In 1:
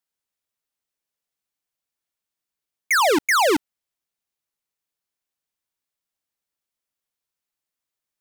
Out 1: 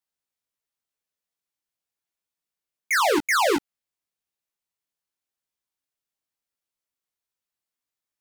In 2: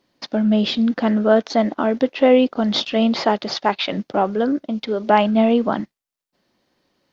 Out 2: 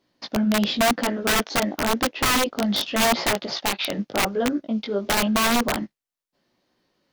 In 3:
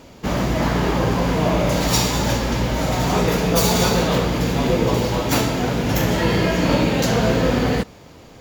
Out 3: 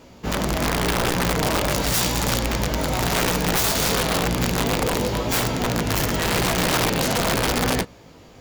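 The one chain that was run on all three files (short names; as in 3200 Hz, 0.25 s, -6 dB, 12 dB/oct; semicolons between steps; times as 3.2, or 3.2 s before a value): chorus 0.9 Hz, delay 16 ms, depth 4.3 ms; wrapped overs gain 14.5 dB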